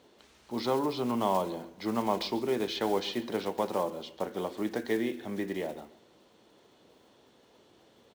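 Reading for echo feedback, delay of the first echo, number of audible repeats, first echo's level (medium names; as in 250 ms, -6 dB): 36%, 138 ms, 2, -20.0 dB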